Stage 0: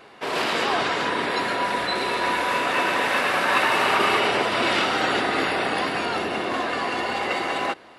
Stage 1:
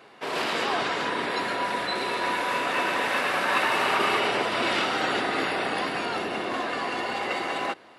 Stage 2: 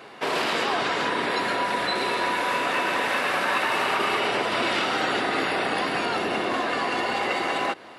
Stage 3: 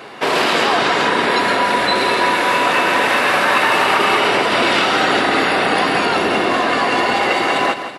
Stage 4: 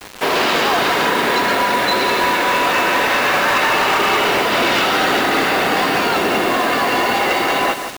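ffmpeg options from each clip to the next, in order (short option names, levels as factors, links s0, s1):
-af "highpass=92,volume=0.668"
-af "acompressor=threshold=0.0316:ratio=3,volume=2.24"
-af "aecho=1:1:166|332|498|664|830:0.299|0.131|0.0578|0.0254|0.0112,volume=2.82"
-af "aresample=16000,asoftclip=type=hard:threshold=0.299,aresample=44100,acrusher=bits=4:mix=0:aa=0.000001"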